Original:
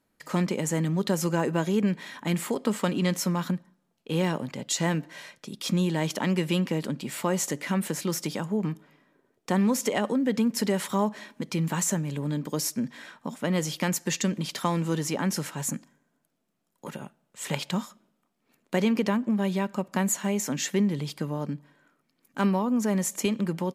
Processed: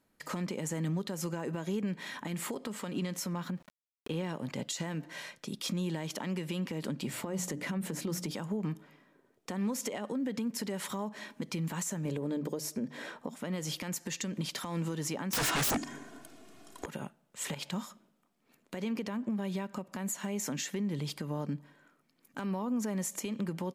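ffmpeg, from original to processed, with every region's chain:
-filter_complex "[0:a]asettb=1/sr,asplit=3[a][b][c];[a]atrim=end=3.334[d];[b]atrim=start=3.33:end=4.29,asetpts=PTS-STARTPTS,afade=t=in:d=0.004:c=qsin,afade=t=out:st=0.956:d=0.004:c=qsin,aeval=exprs='val(0)*gte(abs(val(0)),0.00237)':c=same,highshelf=f=5.2k:g=-6.5,acompressor=mode=upward:threshold=-35dB:ratio=2.5:attack=3.2:release=140:knee=2.83:detection=peak[e];[c]atrim=start=4.286[f];[d][e]acrossfade=d=0.004:c1=hsin:c2=qsin[g];[g][f]acrossfade=d=0.004:c1=qsin:c2=hsin,asettb=1/sr,asplit=3[h][i][j];[h]atrim=end=7.074[k];[i]atrim=start=7.07:end=8.31,asetpts=PTS-STARTPTS,afade=t=in:d=0.004:c=qsin,afade=t=out:st=1.236:d=0.004:c=qsin,tiltshelf=f=720:g=4.5,bandreject=f=60:t=h:w=6,bandreject=f=120:t=h:w=6,bandreject=f=180:t=h:w=6,bandreject=f=240:t=h:w=6,bandreject=f=300:t=h:w=6,acompressor=threshold=-27dB:ratio=3:attack=3.2:release=140:knee=1:detection=peak[l];[j]atrim=start=8.306[m];[k][l]acrossfade=d=0.004:c1=hsin:c2=qsin[n];[n][m]acrossfade=d=0.004:c1=qsin:c2=hsin,asettb=1/sr,asplit=3[o][p][q];[o]atrim=end=12.054[r];[p]atrim=start=12.05:end=13.29,asetpts=PTS-STARTPTS,afade=t=in:d=0.004:c=qsin,afade=t=out:st=1.236:d=0.004:c=qsin,equalizer=f=450:w=0.96:g=11.5,bandreject=f=50:t=h:w=6,bandreject=f=100:t=h:w=6,bandreject=f=150:t=h:w=6,bandreject=f=200:t=h:w=6,bandreject=f=250:t=h:w=6[s];[q]atrim=start=13.286[t];[r][s]acrossfade=d=0.004:c1=hsin:c2=qsin[u];[u][t]acrossfade=d=0.004:c1=qsin:c2=hsin,asettb=1/sr,asplit=3[v][w][x];[v]atrim=end=15.334[y];[w]atrim=start=15.33:end=16.86,asetpts=PTS-STARTPTS,afade=t=in:d=0.004:c=qsin,afade=t=out:st=1.526:d=0.004:c=qsin,lowpass=9.4k,aecho=1:1:2.8:0.64,atrim=end_sample=67473,aeval=exprs='0.141*sin(PI/2*8.91*val(0)/0.141)':c=same[z];[x]atrim=start=16.856[aa];[y][z]acrossfade=d=0.004:c1=hsin:c2=qsin[ab];[ab][aa]acrossfade=d=0.004:c1=qsin:c2=hsin,acompressor=threshold=-29dB:ratio=6,alimiter=level_in=1.5dB:limit=-24dB:level=0:latency=1:release=119,volume=-1.5dB"

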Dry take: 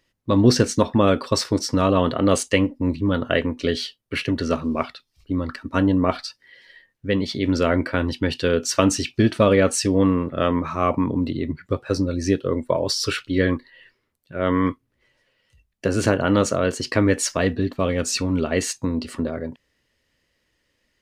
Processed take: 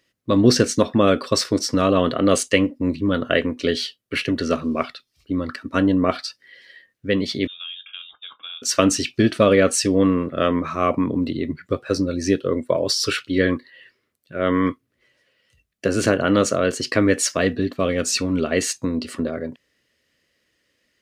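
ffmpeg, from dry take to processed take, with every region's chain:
-filter_complex "[0:a]asettb=1/sr,asplit=3[a][b][c];[a]atrim=end=7.474[d];[b]atrim=start=7.47:end=8.62,asetpts=PTS-STARTPTS,afade=t=in:d=0.004:c=qsin,afade=t=out:st=1.146:d=0.004:c=qsin,asplit=3[e][f][g];[e]bandpass=f=730:t=q:w=8,volume=0dB[h];[f]bandpass=f=1.09k:t=q:w=8,volume=-6dB[i];[g]bandpass=f=2.44k:t=q:w=8,volume=-9dB[j];[h][i][j]amix=inputs=3:normalize=0,acompressor=threshold=-32dB:ratio=6:attack=3.2:release=140:knee=1:detection=peak,lowpass=f=3.3k:t=q:w=0.5098,lowpass=f=3.3k:t=q:w=0.6013,lowpass=f=3.3k:t=q:w=0.9,lowpass=f=3.3k:t=q:w=2.563,afreqshift=-3900[k];[c]atrim=start=8.616[l];[d][k]acrossfade=d=0.004:c1=hsin:c2=qsin[m];[m][l]acrossfade=d=0.004:c1=qsin:c2=hsin,highpass=f=170:p=1,equalizer=f=890:t=o:w=0.32:g=-9.5,volume=2.5dB"

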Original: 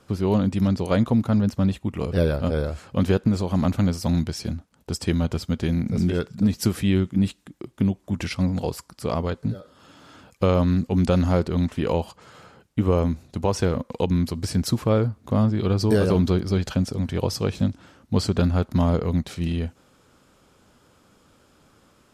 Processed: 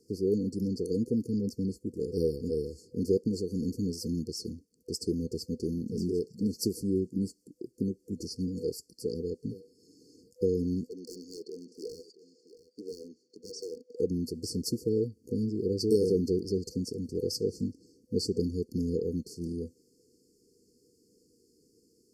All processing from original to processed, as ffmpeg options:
-filter_complex "[0:a]asettb=1/sr,asplit=3[a][b][c];[a]atrim=end=10.894[d];[b]atrim=start=10.89:end=13.97,asetpts=PTS-STARTPTS,afade=t=in:d=0.004:c=qsin,afade=t=out:st=3.076:d=0.004:c=qsin,highpass=600,lowpass=4.4k,aeval=exprs='0.0447*(abs(mod(val(0)/0.0447+3,4)-2)-1)':c=same,aecho=1:1:675:0.168,atrim=end_sample=135828[e];[c]atrim=start=13.966[f];[d][e]acrossfade=d=0.004:c1=hsin:c2=qsin[g];[g][f]acrossfade=d=0.004:c1=qsin:c2=hsin,lowshelf=f=72:g=-6,afftfilt=real='re*(1-between(b*sr/4096,500,4300))':imag='im*(1-between(b*sr/4096,500,4300))':win_size=4096:overlap=0.75,bass=f=250:g=-14,treble=f=4k:g=-5"

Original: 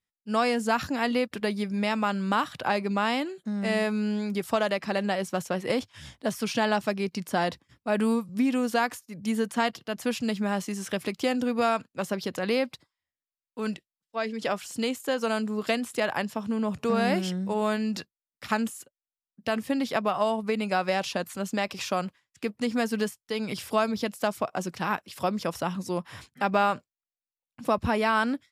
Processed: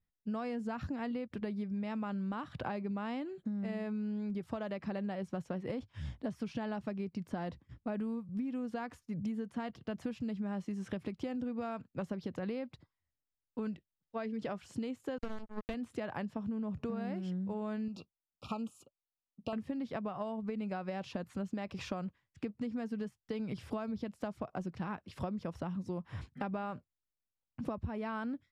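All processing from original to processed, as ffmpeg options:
-filter_complex "[0:a]asettb=1/sr,asplit=3[a][b][c];[a]atrim=end=15.184[d];[b]atrim=start=15.18:end=15.74,asetpts=PTS-STARTPTS,afade=t=in:d=0.004:c=qsin,afade=t=out:st=0.556:d=0.004:c=qsin,highpass=f=100:p=1,acrusher=bits=3:mix=0:aa=0.5[e];[c]atrim=start=15.736[f];[d][e]acrossfade=d=0.004:c1=hsin:c2=qsin[g];[g][f]acrossfade=d=0.004:c1=qsin:c2=hsin,asettb=1/sr,asplit=3[h][i][j];[h]atrim=end=17.884[k];[i]atrim=start=17.88:end=19.53,asetpts=PTS-STARTPTS,afade=t=in:d=0.004:c=qsin,afade=t=out:st=1.646:d=0.004:c=qsin,asuperstop=centerf=1800:order=20:qfactor=1.8,lowshelf=f=320:g=-9.5[l];[j]atrim=start=19.526[m];[k][l]acrossfade=d=0.004:c1=hsin:c2=qsin[n];[n][m]acrossfade=d=0.004:c1=qsin:c2=hsin,aemphasis=mode=reproduction:type=riaa,acompressor=threshold=-31dB:ratio=10,volume=-4dB"

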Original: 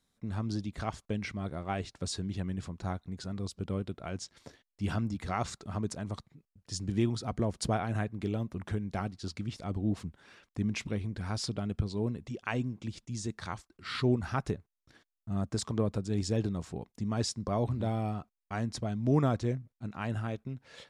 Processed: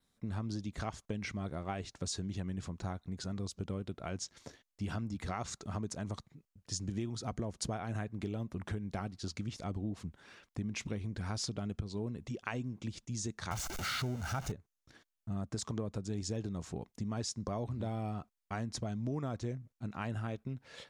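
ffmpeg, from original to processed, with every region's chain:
-filter_complex "[0:a]asettb=1/sr,asplit=3[a][b][c];[a]atrim=end=13.514[d];[b]atrim=start=13.51:end=14.52,asetpts=PTS-STARTPTS,afade=t=in:d=0.004:c=qsin,afade=t=out:st=1.006:d=0.004:c=qsin,aeval=exprs='val(0)+0.5*0.0188*sgn(val(0))':c=same,aecho=1:1:1.4:0.44,atrim=end_sample=44541[e];[c]atrim=start=14.516[f];[d][e]acrossfade=d=0.004:c1=hsin:c2=qsin[g];[g][f]acrossfade=d=0.004:c1=qsin:c2=hsin,adynamicequalizer=threshold=0.00112:dfrequency=6400:dqfactor=3.5:tfrequency=6400:tqfactor=3.5:attack=5:release=100:ratio=0.375:range=3.5:mode=boostabove:tftype=bell,acompressor=threshold=-34dB:ratio=6"

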